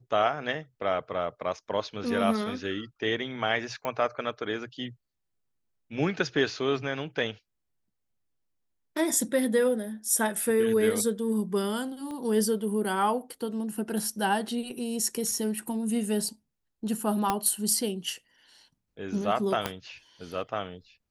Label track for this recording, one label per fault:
3.850000	3.850000	pop -18 dBFS
12.110000	12.110000	pop -27 dBFS
17.300000	17.300000	pop -11 dBFS
19.660000	19.660000	pop -12 dBFS

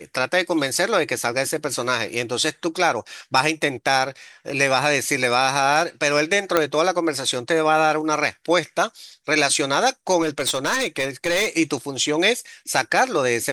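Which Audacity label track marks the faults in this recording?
6.570000	6.570000	pop -3 dBFS
10.210000	11.490000	clipped -17 dBFS

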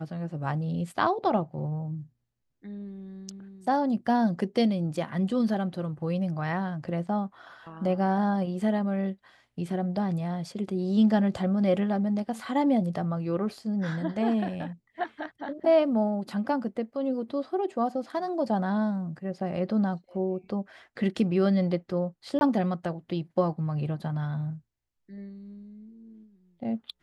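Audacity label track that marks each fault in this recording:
22.390000	22.410000	gap 21 ms

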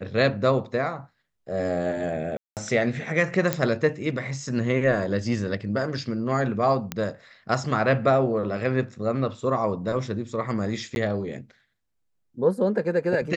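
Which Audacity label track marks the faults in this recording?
2.370000	2.570000	gap 0.198 s
3.530000	3.530000	pop -7 dBFS
6.920000	6.920000	pop -12 dBFS
10.950000	10.960000	gap 11 ms

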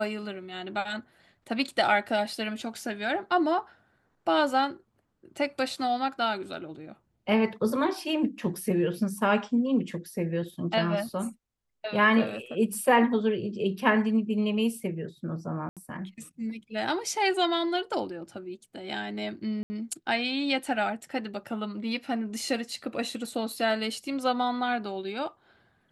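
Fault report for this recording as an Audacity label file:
15.690000	15.770000	gap 77 ms
19.630000	19.700000	gap 70 ms

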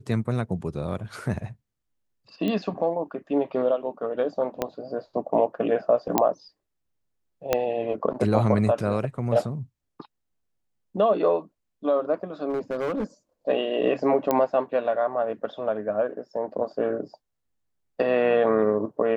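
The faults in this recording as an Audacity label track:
2.480000	2.480000	pop -17 dBFS
4.620000	4.620000	pop -11 dBFS
6.180000	6.180000	pop -4 dBFS
7.530000	7.530000	pop -7 dBFS
12.490000	13.040000	clipped -23 dBFS
14.310000	14.310000	pop -10 dBFS

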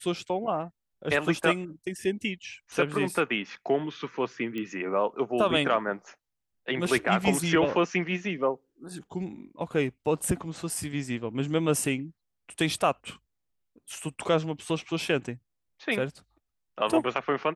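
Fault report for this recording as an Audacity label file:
4.580000	4.580000	pop -22 dBFS

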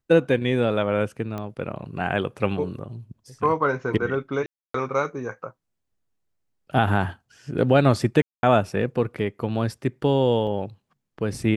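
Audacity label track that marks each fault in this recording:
1.380000	1.380000	pop -19 dBFS
4.460000	4.740000	gap 0.284 s
8.220000	8.430000	gap 0.211 s
10.470000	10.470000	gap 4.3 ms

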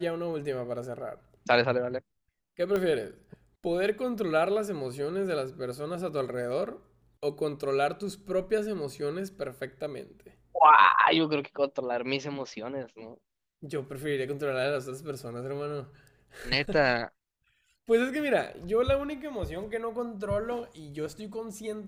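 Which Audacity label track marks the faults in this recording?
2.760000	2.760000	pop -17 dBFS

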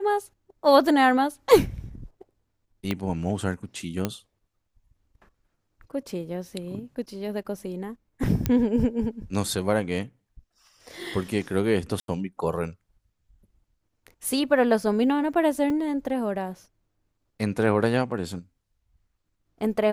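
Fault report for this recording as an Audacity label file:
2.910000	2.910000	pop -13 dBFS
4.050000	4.050000	pop -11 dBFS
8.460000	8.460000	pop -10 dBFS
12.000000	12.080000	gap 82 ms
15.700000	15.700000	gap 2.1 ms

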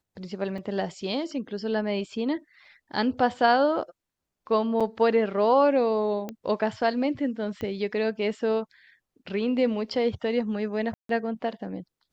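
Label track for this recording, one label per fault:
0.580000	0.580000	gap 3.3 ms
4.800000	4.810000	gap 6.1 ms
6.290000	6.290000	pop -20 dBFS
7.610000	7.610000	pop -22 dBFS
10.940000	11.090000	gap 0.153 s

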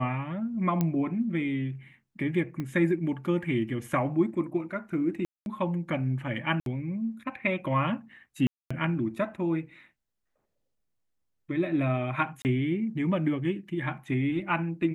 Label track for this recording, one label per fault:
0.810000	0.810000	pop -14 dBFS
2.600000	2.600000	pop -22 dBFS
5.250000	5.460000	gap 0.211 s
6.600000	6.660000	gap 62 ms
8.470000	8.710000	gap 0.235 s
12.420000	12.450000	gap 29 ms

